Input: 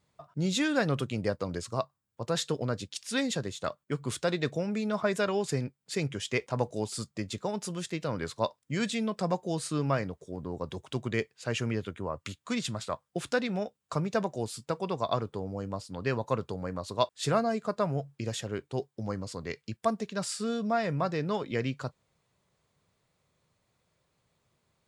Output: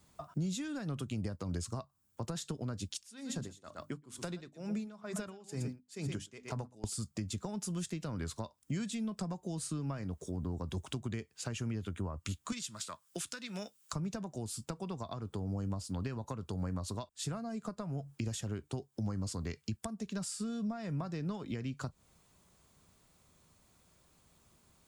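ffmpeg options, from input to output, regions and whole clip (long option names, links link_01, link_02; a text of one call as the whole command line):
ffmpeg -i in.wav -filter_complex "[0:a]asettb=1/sr,asplit=3[link_01][link_02][link_03];[link_01]atrim=end=2.944[link_04];[link_02]atrim=start=2.94:end=6.84,asetpts=PTS-STARTPTS,afade=type=in:duration=0.004:curve=qsin,afade=type=out:start_time=3.896:duration=0.004:curve=qsin,bandreject=frequency=50:width_type=h:width=6,bandreject=frequency=100:width_type=h:width=6,bandreject=frequency=150:width_type=h:width=6,bandreject=frequency=200:width_type=h:width=6,bandreject=frequency=250:width_type=h:width=6,bandreject=frequency=300:width_type=h:width=6,aecho=1:1:119:0.211,atrim=end_sample=171990,aeval=exprs='val(0)*pow(10,-27*(0.5-0.5*cos(2*PI*2.2*n/s))/20)':channel_layout=same[link_05];[link_03]atrim=start=6.836[link_06];[link_04][link_05]acrossfade=duration=0.004:curve1=hsin:curve2=qsin[link_07];[link_07][link_06]acrossfade=duration=0.004:curve1=qsin:curve2=hsin,asettb=1/sr,asplit=3[link_08][link_09][link_10];[link_08]atrim=end=12.524[link_11];[link_09]atrim=start=12.52:end=13.93,asetpts=PTS-STARTPTS,afade=type=in:duration=0.004:curve=qsin,afade=type=out:start_time=1.406:duration=0.004:curve=qsin,highpass=140,tiltshelf=frequency=930:gain=-8.5,bandreject=frequency=760:width=5.8[link_12];[link_10]atrim=start=13.926[link_13];[link_11][link_12]acrossfade=duration=0.004:curve1=hsin:curve2=qsin[link_14];[link_14][link_13]acrossfade=duration=0.004:curve1=qsin:curve2=hsin,acompressor=threshold=-33dB:ratio=6,equalizer=frequency=125:width_type=o:width=1:gain=-10,equalizer=frequency=500:width_type=o:width=1:gain=-10,equalizer=frequency=1000:width_type=o:width=1:gain=-4,equalizer=frequency=2000:width_type=o:width=1:gain=-8,equalizer=frequency=4000:width_type=o:width=1:gain=-6,acrossover=split=150[link_15][link_16];[link_16]acompressor=threshold=-54dB:ratio=5[link_17];[link_15][link_17]amix=inputs=2:normalize=0,volume=13.5dB" out.wav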